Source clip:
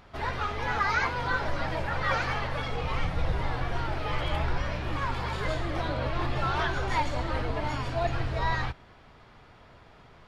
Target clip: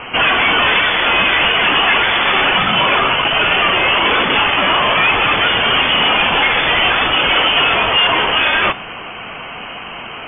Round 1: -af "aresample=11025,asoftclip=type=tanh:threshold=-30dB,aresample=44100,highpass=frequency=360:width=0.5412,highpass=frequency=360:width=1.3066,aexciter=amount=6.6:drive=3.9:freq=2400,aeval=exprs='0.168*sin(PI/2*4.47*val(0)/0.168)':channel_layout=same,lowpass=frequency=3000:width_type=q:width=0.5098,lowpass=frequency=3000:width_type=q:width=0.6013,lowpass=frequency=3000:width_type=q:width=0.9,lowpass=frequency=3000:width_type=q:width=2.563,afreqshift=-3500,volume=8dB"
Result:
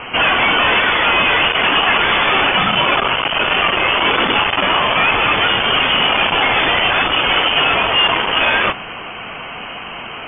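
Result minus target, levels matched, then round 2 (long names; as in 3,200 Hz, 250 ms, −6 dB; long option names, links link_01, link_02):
soft clipping: distortion +7 dB
-af "aresample=11025,asoftclip=type=tanh:threshold=-22.5dB,aresample=44100,highpass=frequency=360:width=0.5412,highpass=frequency=360:width=1.3066,aexciter=amount=6.6:drive=3.9:freq=2400,aeval=exprs='0.168*sin(PI/2*4.47*val(0)/0.168)':channel_layout=same,lowpass=frequency=3000:width_type=q:width=0.5098,lowpass=frequency=3000:width_type=q:width=0.6013,lowpass=frequency=3000:width_type=q:width=0.9,lowpass=frequency=3000:width_type=q:width=2.563,afreqshift=-3500,volume=8dB"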